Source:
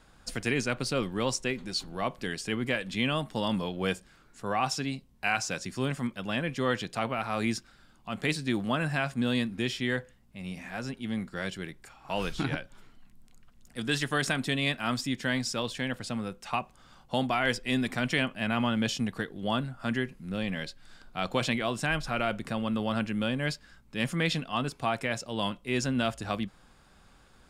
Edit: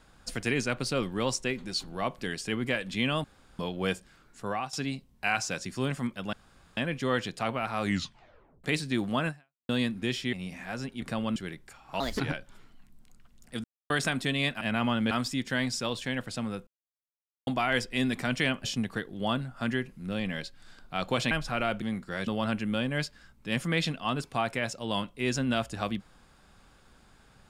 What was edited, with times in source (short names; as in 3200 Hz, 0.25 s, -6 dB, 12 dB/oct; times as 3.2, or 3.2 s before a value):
3.24–3.59 room tone
4.46–4.73 fade out, to -16.5 dB
6.33 insert room tone 0.44 s
7.38 tape stop 0.82 s
8.84–9.25 fade out exponential
9.89–10.38 cut
11.07–11.52 swap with 22.41–22.75
12.16–12.43 speed 135%
13.87–14.13 mute
16.4–17.2 mute
18.37–18.87 move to 14.84
21.54–21.9 cut